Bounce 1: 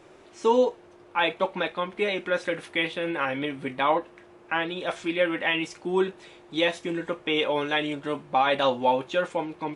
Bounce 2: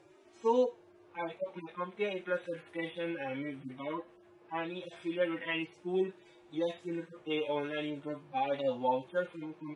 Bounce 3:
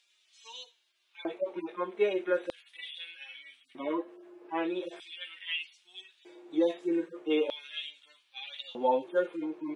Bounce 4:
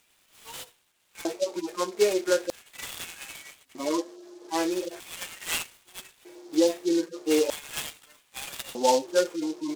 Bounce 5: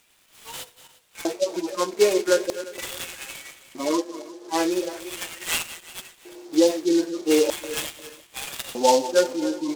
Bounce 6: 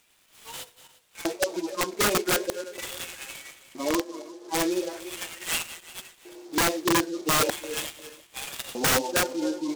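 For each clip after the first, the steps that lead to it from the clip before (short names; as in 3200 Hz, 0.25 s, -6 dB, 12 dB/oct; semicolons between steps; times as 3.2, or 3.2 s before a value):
median-filter separation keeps harmonic; gain -7 dB
LFO high-pass square 0.4 Hz 340–3400 Hz; gain +1.5 dB
noise-modulated delay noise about 4800 Hz, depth 0.061 ms; gain +5 dB
regenerating reverse delay 0.176 s, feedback 51%, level -14 dB; gain +4 dB
wrapped overs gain 14.5 dB; gain -2.5 dB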